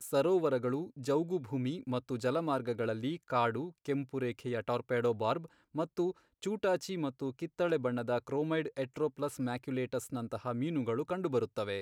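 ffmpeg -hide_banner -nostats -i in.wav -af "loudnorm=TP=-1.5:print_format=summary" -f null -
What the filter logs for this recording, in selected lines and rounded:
Input Integrated:    -34.9 LUFS
Input True Peak:     -18.2 dBTP
Input LRA:             1.4 LU
Input Threshold:     -44.9 LUFS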